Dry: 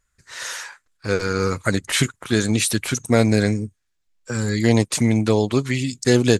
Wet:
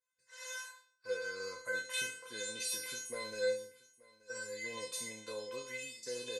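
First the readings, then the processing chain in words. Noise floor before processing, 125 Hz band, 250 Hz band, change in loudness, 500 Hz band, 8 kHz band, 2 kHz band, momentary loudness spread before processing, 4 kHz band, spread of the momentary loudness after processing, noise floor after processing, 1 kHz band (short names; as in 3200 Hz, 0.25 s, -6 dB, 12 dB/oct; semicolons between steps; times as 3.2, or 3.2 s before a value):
-73 dBFS, under -40 dB, -36.0 dB, -19.5 dB, -18.0 dB, -14.5 dB, -13.5 dB, 13 LU, -15.0 dB, 10 LU, -76 dBFS, -21.5 dB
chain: spectral trails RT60 0.41 s; HPF 220 Hz 12 dB/oct; limiter -9.5 dBFS, peak gain reduction 7 dB; resonator 510 Hz, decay 0.38 s, mix 100%; on a send: echo 0.879 s -21.5 dB; on the sum: gain +1.5 dB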